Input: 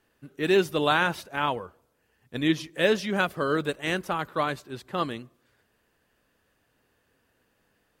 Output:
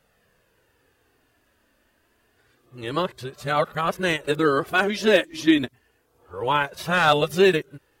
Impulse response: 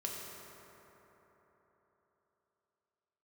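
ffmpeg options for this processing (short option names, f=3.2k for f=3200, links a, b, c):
-af "areverse,volume=12dB,asoftclip=hard,volume=-12dB,flanger=delay=1.4:depth=2:regen=-31:speed=0.28:shape=triangular,volume=8.5dB"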